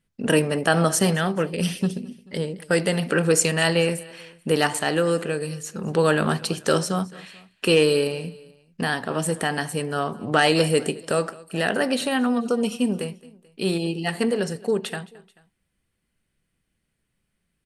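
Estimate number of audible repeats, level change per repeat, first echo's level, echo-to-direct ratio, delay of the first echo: 2, -4.5 dB, -22.0 dB, -20.5 dB, 0.218 s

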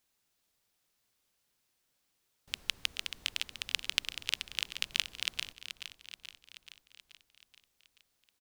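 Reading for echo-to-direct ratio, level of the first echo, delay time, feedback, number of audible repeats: -8.5 dB, -10.5 dB, 0.43 s, 59%, 6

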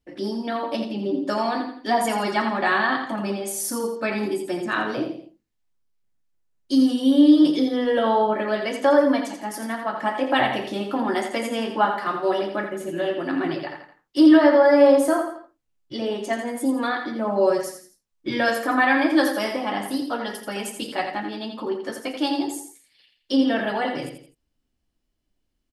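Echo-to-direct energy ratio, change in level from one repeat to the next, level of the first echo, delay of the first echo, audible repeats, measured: -6.5 dB, -8.0 dB, -7.5 dB, 84 ms, 3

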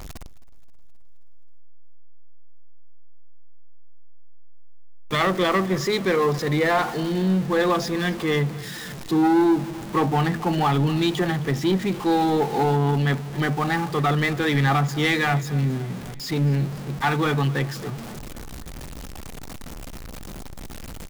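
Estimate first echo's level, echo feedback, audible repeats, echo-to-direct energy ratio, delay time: -20.0 dB, 58%, 4, -18.0 dB, 0.264 s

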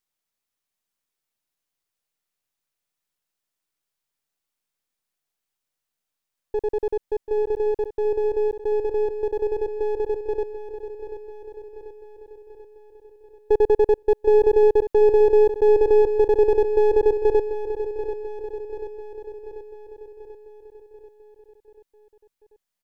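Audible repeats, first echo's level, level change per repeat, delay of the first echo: 6, -10.0 dB, -5.0 dB, 0.738 s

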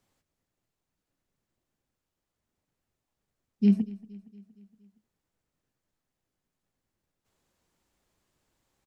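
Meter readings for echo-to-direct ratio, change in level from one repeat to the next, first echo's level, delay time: -18.5 dB, -4.5 dB, -20.5 dB, 0.233 s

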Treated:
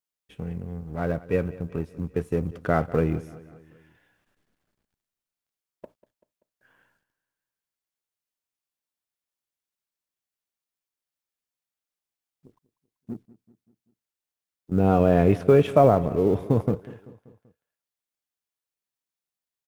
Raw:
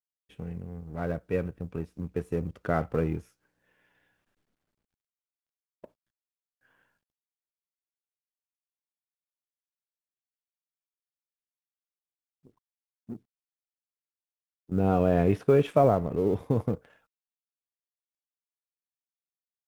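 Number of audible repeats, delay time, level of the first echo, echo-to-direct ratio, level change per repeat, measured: 3, 0.193 s, -19.0 dB, -17.5 dB, -5.5 dB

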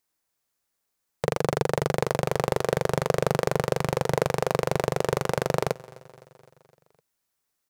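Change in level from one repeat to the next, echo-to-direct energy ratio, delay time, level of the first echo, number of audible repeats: -4.5 dB, -19.5 dB, 0.256 s, -21.5 dB, 4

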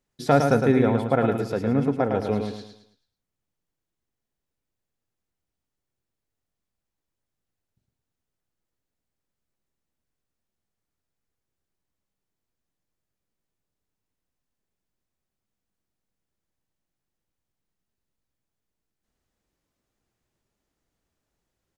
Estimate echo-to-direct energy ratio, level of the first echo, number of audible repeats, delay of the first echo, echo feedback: -5.0 dB, -5.5 dB, 4, 0.109 s, 38%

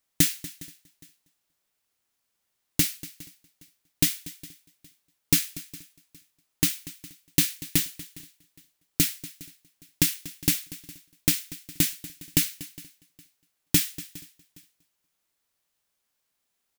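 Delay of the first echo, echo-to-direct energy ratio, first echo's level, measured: 0.239 s, -16.0 dB, -18.0 dB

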